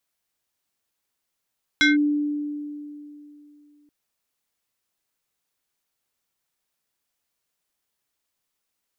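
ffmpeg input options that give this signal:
-f lavfi -i "aevalsrc='0.224*pow(10,-3*t/2.91)*sin(2*PI*294*t+2*clip(1-t/0.16,0,1)*sin(2*PI*6.23*294*t))':d=2.08:s=44100"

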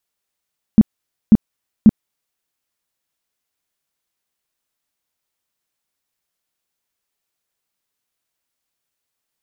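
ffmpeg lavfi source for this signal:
-f lavfi -i "aevalsrc='0.75*sin(2*PI*216*mod(t,0.54))*lt(mod(t,0.54),7/216)':d=1.62:s=44100"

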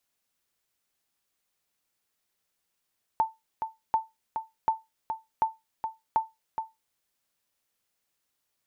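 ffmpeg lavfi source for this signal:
-f lavfi -i "aevalsrc='0.168*(sin(2*PI*889*mod(t,0.74))*exp(-6.91*mod(t,0.74)/0.2)+0.422*sin(2*PI*889*max(mod(t,0.74)-0.42,0))*exp(-6.91*max(mod(t,0.74)-0.42,0)/0.2))':d=3.7:s=44100"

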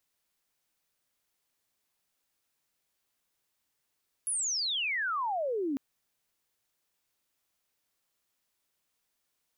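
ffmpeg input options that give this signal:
-f lavfi -i "aevalsrc='0.0376*sin(2*PI*11000*1.5/log(260/11000)*(exp(log(260/11000)*t/1.5)-1))':d=1.5:s=44100"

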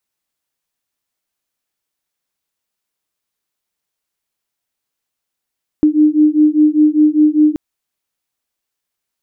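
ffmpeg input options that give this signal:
-f lavfi -i "aevalsrc='0.282*(sin(2*PI*301*t)+sin(2*PI*306*t))':d=1.73:s=44100"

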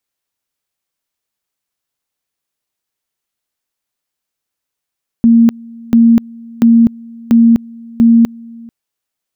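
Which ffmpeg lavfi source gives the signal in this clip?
-f lavfi -i "aevalsrc='pow(10,(-3.5-25.5*gte(mod(t,0.69),0.25))/20)*sin(2*PI*231*t)':d=3.45:s=44100"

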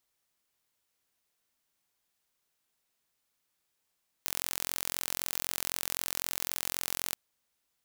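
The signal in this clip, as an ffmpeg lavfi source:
-f lavfi -i "aevalsrc='0.531*eq(mod(n,1005),0)':d=2.88:s=44100"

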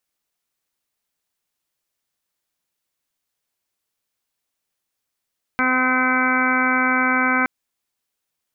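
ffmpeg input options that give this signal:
-f lavfi -i "aevalsrc='0.075*sin(2*PI*256*t)+0.0299*sin(2*PI*512*t)+0.0398*sin(2*PI*768*t)+0.0531*sin(2*PI*1024*t)+0.0668*sin(2*PI*1280*t)+0.0944*sin(2*PI*1536*t)+0.0119*sin(2*PI*1792*t)+0.0501*sin(2*PI*2048*t)+0.0531*sin(2*PI*2304*t)':d=1.87:s=44100"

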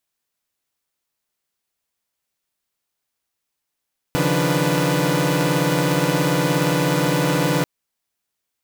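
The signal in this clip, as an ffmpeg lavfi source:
-f lavfi -i "aevalsrc='0.0891*((2*mod(138.59*t,1)-1)+(2*mod(155.56*t,1)-1)+(2*mod(174.61*t,1)-1)+(2*mod(293.66*t,1)-1)+(2*mod(493.88*t,1)-1))':d=3.49:s=44100"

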